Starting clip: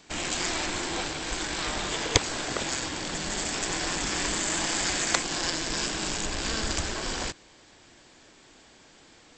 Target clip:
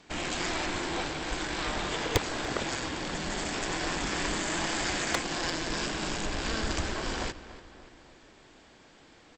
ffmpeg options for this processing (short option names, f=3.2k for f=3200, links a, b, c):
-filter_complex "[0:a]aemphasis=mode=reproduction:type=50kf,volume=16.5dB,asoftclip=hard,volume=-16.5dB,asplit=2[a][b];[b]adelay=289,lowpass=f=3.5k:p=1,volume=-15dB,asplit=2[c][d];[d]adelay=289,lowpass=f=3.5k:p=1,volume=0.54,asplit=2[e][f];[f]adelay=289,lowpass=f=3.5k:p=1,volume=0.54,asplit=2[g][h];[h]adelay=289,lowpass=f=3.5k:p=1,volume=0.54,asplit=2[i][j];[j]adelay=289,lowpass=f=3.5k:p=1,volume=0.54[k];[a][c][e][g][i][k]amix=inputs=6:normalize=0"